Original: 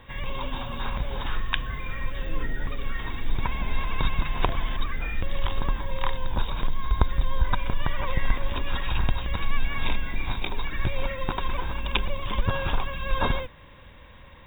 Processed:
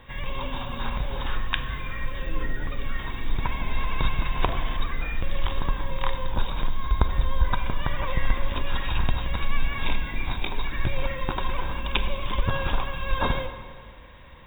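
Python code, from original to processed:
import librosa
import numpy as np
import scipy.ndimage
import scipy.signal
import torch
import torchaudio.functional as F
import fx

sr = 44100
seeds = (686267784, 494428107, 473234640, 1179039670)

y = fx.rev_plate(x, sr, seeds[0], rt60_s=1.9, hf_ratio=0.8, predelay_ms=0, drr_db=8.0)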